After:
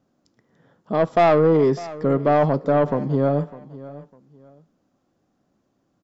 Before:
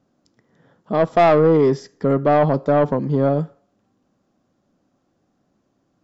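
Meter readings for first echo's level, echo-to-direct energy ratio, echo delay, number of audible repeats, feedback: −18.0 dB, −17.5 dB, 603 ms, 2, 26%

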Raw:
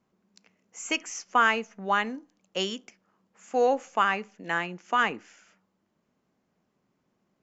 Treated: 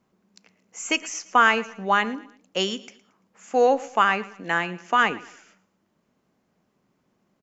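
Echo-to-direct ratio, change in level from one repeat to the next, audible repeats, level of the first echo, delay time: −18.5 dB, −8.5 dB, 2, −19.0 dB, 113 ms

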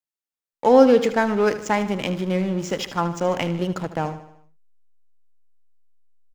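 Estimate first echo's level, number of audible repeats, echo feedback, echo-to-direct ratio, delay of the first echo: −13.0 dB, 4, 52%, −11.5 dB, 76 ms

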